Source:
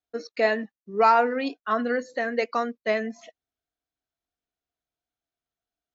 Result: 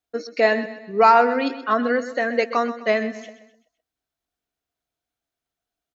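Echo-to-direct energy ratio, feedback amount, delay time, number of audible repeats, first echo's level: −12.5 dB, 43%, 128 ms, 3, −13.5 dB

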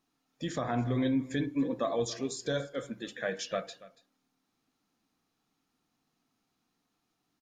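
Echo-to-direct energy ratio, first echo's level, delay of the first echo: −19.0 dB, −19.0 dB, 283 ms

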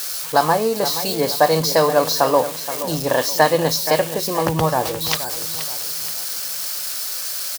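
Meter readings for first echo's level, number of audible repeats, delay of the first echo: −12.0 dB, 3, 475 ms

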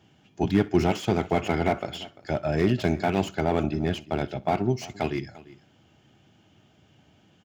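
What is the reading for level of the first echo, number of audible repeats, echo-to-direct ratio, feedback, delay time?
−21.5 dB, 3, −17.5 dB, repeats not evenly spaced, 62 ms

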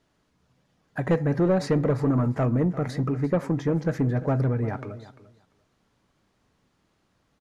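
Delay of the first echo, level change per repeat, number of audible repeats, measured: 345 ms, −16.0 dB, 2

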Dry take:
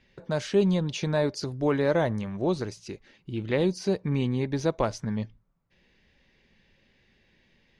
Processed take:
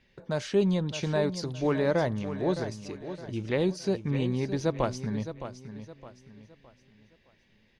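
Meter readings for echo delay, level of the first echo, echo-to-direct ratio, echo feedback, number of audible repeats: 614 ms, −11.0 dB, −10.5 dB, 36%, 3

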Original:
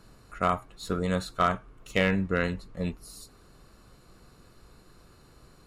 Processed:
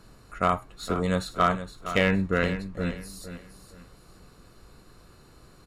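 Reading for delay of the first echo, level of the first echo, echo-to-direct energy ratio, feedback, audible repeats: 465 ms, −11.5 dB, −11.0 dB, 29%, 3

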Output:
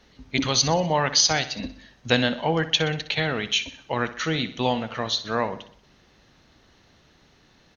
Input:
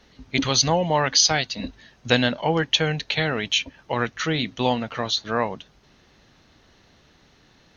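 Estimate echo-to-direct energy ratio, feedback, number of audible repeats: −12.5 dB, 50%, 4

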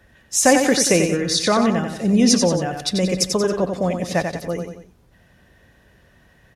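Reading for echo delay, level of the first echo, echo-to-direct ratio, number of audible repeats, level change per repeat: 91 ms, −6.0 dB, −5.0 dB, 3, −6.5 dB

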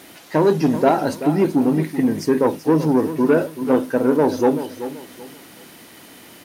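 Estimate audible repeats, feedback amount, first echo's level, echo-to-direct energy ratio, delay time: 3, 29%, −12.0 dB, −11.5 dB, 382 ms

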